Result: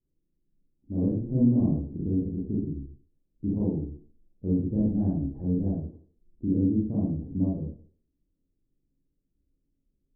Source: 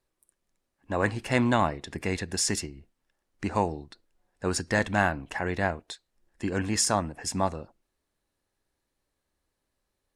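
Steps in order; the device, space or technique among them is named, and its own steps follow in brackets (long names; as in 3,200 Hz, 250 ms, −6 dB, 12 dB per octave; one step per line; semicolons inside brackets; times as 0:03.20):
next room (low-pass filter 320 Hz 24 dB per octave; convolution reverb RT60 0.45 s, pre-delay 30 ms, DRR −7 dB)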